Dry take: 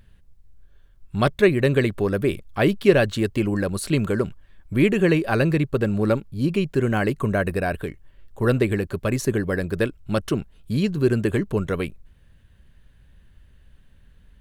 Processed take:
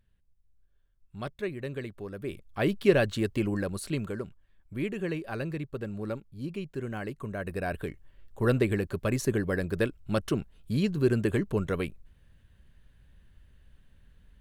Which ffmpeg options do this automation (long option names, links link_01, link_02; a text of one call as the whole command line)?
ffmpeg -i in.wav -af "volume=3dB,afade=type=in:start_time=2.16:duration=0.66:silence=0.281838,afade=type=out:start_time=3.45:duration=0.81:silence=0.398107,afade=type=in:start_time=7.36:duration=0.53:silence=0.354813" out.wav